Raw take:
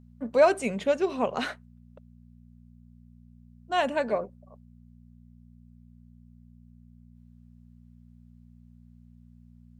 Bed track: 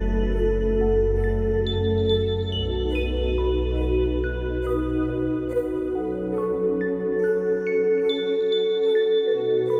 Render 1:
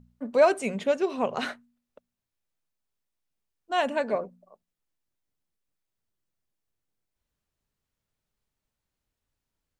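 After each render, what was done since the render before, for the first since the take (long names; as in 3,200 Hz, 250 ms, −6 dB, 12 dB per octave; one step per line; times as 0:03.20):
hum removal 60 Hz, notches 4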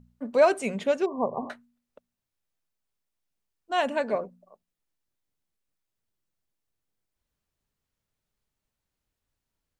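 0:01.06–0:01.50: linear-phase brick-wall low-pass 1,200 Hz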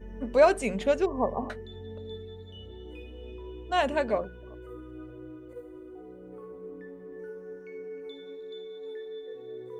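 mix in bed track −19.5 dB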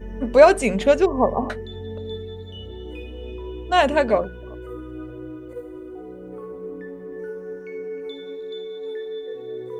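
level +8.5 dB
brickwall limiter −1 dBFS, peak gain reduction 1.5 dB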